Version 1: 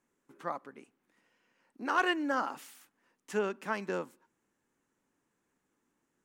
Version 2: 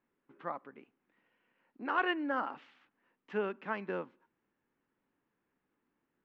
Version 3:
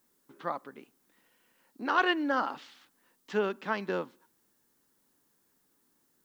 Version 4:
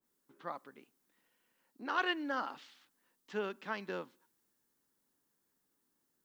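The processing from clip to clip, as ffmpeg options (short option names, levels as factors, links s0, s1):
-af "lowpass=f=3200:w=0.5412,lowpass=f=3200:w=1.3066,volume=0.75"
-af "aexciter=amount=7.2:drive=2.9:freq=3600,volume=1.78"
-af "adynamicequalizer=threshold=0.00891:dfrequency=1500:dqfactor=0.7:tfrequency=1500:tqfactor=0.7:attack=5:release=100:ratio=0.375:range=2:mode=boostabove:tftype=highshelf,volume=0.376"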